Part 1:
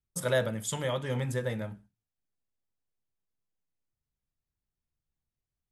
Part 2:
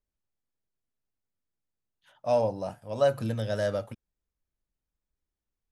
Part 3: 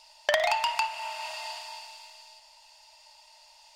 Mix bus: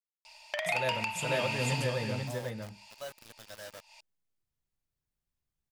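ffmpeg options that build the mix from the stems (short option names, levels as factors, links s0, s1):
-filter_complex "[0:a]adelay=500,volume=0.891,asplit=2[s0][s1];[s1]volume=0.596[s2];[1:a]tiltshelf=f=910:g=-9,bandreject=f=182:t=h:w=4,bandreject=f=364:t=h:w=4,bandreject=f=546:t=h:w=4,bandreject=f=728:t=h:w=4,bandreject=f=910:t=h:w=4,bandreject=f=1092:t=h:w=4,bandreject=f=1274:t=h:w=4,bandreject=f=1456:t=h:w=4,bandreject=f=1638:t=h:w=4,bandreject=f=1820:t=h:w=4,bandreject=f=2002:t=h:w=4,bandreject=f=2184:t=h:w=4,bandreject=f=2366:t=h:w=4,acrusher=bits=4:mix=0:aa=0.000001,volume=0.15,asplit=2[s3][s4];[2:a]equalizer=f=2400:w=4.9:g=14,adelay=250,volume=0.944[s5];[s4]apad=whole_len=176636[s6];[s5][s6]sidechaincompress=threshold=0.00126:ratio=8:attack=49:release=189[s7];[s2]aecho=0:1:492:1[s8];[s0][s3][s7][s8]amix=inputs=4:normalize=0,alimiter=limit=0.112:level=0:latency=1:release=319"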